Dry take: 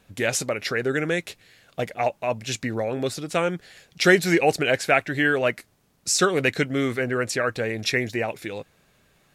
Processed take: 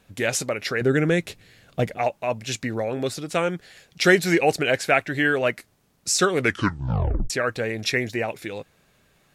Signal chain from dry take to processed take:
0:00.81–0:01.98: low-shelf EQ 330 Hz +10 dB
0:06.37: tape stop 0.93 s

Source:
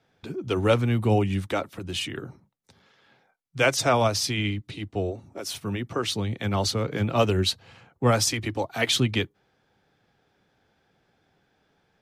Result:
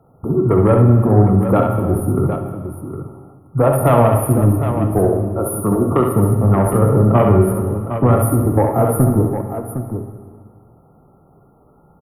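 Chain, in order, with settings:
0:04.98–0:05.91: meter weighting curve D
brick-wall band-stop 1,400–9,500 Hz
low-shelf EQ 220 Hz +6 dB
downward compressor 6 to 1, threshold −22 dBFS, peak gain reduction 9 dB
sine wavefolder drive 4 dB, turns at −13 dBFS
multi-tap delay 67/759 ms −5.5/−9.5 dB
dense smooth reverb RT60 1.8 s, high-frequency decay 0.8×, DRR 5.5 dB
level +5.5 dB

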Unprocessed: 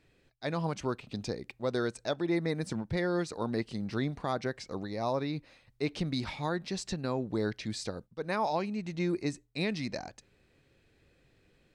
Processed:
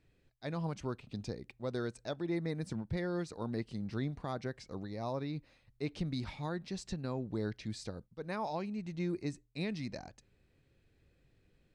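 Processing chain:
low-shelf EQ 200 Hz +8.5 dB
level −8 dB

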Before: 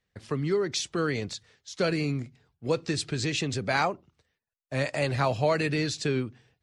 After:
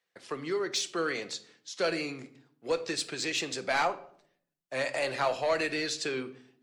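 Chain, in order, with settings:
high-pass filter 430 Hz 12 dB per octave
soft clipping −19.5 dBFS, distortion −18 dB
rectangular room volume 950 cubic metres, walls furnished, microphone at 0.79 metres

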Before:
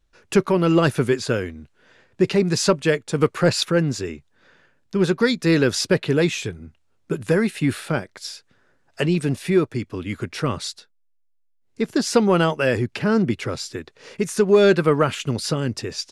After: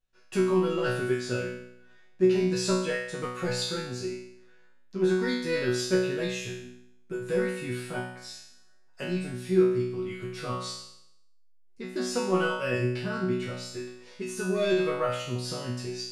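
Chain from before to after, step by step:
resonators tuned to a chord B2 fifth, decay 0.75 s
level +8.5 dB

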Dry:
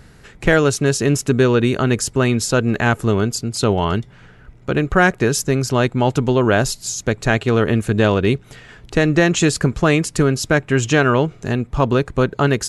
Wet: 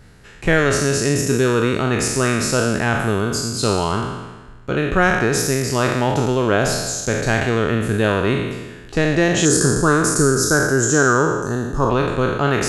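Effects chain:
peak hold with a decay on every bin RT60 1.25 s
0:09.45–0:11.90: drawn EQ curve 230 Hz 0 dB, 420 Hz +4 dB, 650 Hz −5 dB, 1,500 Hz +5 dB, 2,300 Hz −21 dB, 6,200 Hz +7 dB
level −4 dB

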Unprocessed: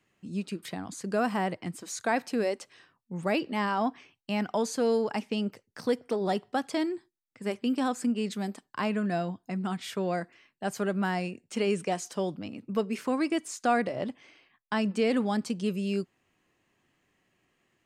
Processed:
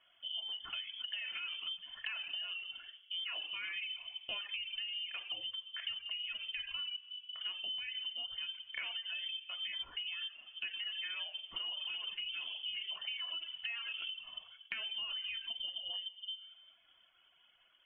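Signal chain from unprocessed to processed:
0:11.18–0:13.44: delay that plays each chunk backwards 324 ms, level −3 dB
high-frequency loss of the air 170 metres
rectangular room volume 3,200 cubic metres, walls furnished, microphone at 3.5 metres
brickwall limiter −19 dBFS, peak gain reduction 7.5 dB
voice inversion scrambler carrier 3,300 Hz
reverb reduction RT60 0.86 s
parametric band 290 Hz −11 dB 1.6 octaves
mains-hum notches 50/100/150 Hz
downward compressor 10 to 1, threshold −42 dBFS, peak gain reduction 18.5 dB
level +3.5 dB
MP3 24 kbit/s 24,000 Hz

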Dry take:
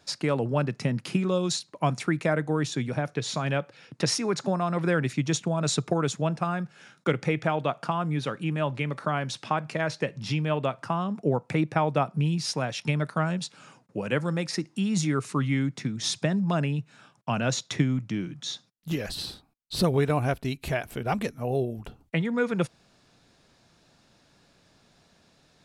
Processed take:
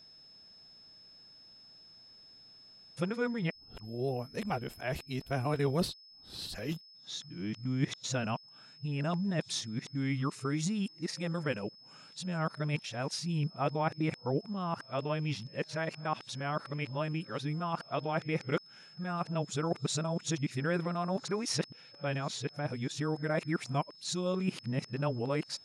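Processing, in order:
played backwards from end to start
steady tone 5,200 Hz −47 dBFS
level −7 dB

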